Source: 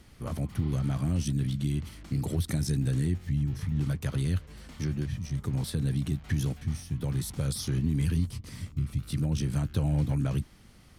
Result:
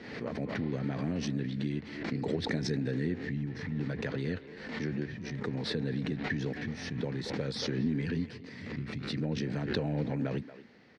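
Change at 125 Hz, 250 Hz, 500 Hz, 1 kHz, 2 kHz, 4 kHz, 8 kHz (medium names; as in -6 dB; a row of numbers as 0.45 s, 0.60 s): -8.0 dB, -1.0 dB, +5.5 dB, +2.0 dB, +6.5 dB, +2.0 dB, -10.0 dB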